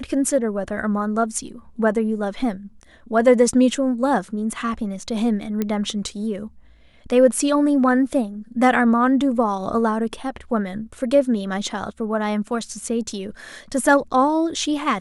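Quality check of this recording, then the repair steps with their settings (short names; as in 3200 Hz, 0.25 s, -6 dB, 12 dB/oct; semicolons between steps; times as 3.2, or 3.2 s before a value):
5.62 pop -10 dBFS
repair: de-click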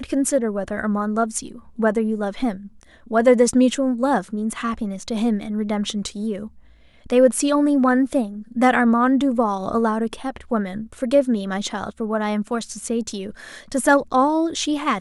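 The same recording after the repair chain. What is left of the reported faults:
none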